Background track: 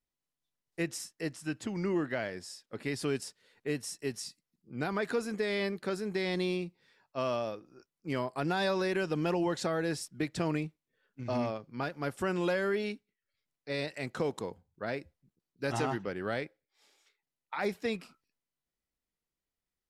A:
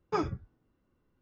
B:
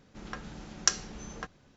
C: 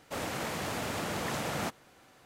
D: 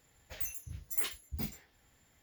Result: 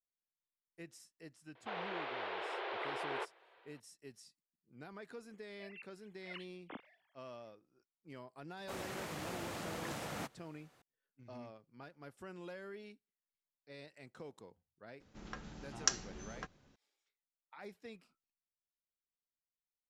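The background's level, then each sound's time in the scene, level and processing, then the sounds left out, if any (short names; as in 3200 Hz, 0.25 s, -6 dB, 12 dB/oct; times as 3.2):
background track -18 dB
1.55 add C -6 dB + mistuned SSB +200 Hz 160–3600 Hz
5.3 add D -16 dB + sine-wave speech
8.57 add C -9 dB
15 add B -6.5 dB
not used: A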